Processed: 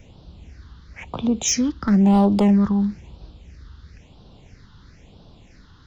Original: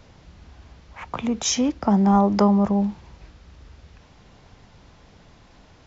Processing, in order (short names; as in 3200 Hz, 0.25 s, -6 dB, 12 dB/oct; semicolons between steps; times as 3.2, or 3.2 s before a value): overloaded stage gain 14 dB; phaser stages 6, 1 Hz, lowest notch 610–2000 Hz; gain +3 dB